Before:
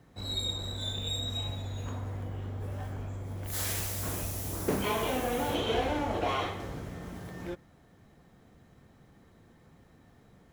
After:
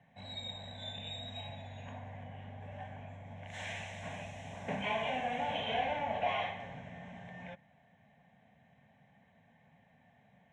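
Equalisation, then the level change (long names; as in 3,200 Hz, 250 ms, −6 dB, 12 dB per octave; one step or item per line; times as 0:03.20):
high-frequency loss of the air 160 metres
loudspeaker in its box 210–8,200 Hz, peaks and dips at 320 Hz −9 dB, 480 Hz −9 dB, 1,000 Hz −6 dB
phaser with its sweep stopped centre 1,300 Hz, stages 6
+3.0 dB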